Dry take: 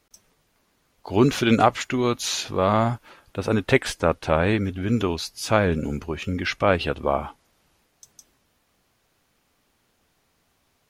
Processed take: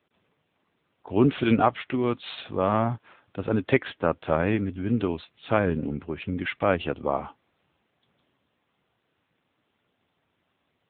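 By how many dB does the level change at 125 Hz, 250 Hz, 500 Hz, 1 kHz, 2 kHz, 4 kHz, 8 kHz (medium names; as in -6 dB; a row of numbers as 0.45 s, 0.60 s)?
-4.0 dB, -2.0 dB, -3.5 dB, -4.0 dB, -5.0 dB, -9.5 dB, under -40 dB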